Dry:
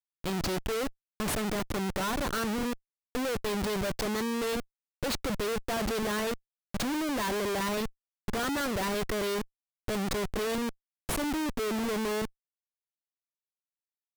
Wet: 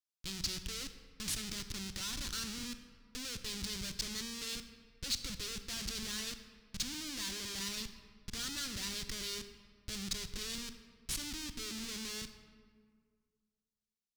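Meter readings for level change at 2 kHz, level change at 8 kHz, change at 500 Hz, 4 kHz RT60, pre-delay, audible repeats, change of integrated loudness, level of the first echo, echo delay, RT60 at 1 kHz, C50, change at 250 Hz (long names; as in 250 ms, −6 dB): −10.0 dB, −0.5 dB, −21.5 dB, 1.1 s, 27 ms, no echo audible, −7.5 dB, no echo audible, no echo audible, 1.9 s, 10.0 dB, −14.0 dB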